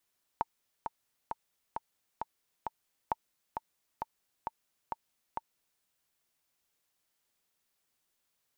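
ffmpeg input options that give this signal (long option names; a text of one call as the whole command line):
ffmpeg -f lavfi -i "aevalsrc='pow(10,(-15.5-6*gte(mod(t,6*60/133),60/133))/20)*sin(2*PI*904*mod(t,60/133))*exp(-6.91*mod(t,60/133)/0.03)':duration=5.41:sample_rate=44100" out.wav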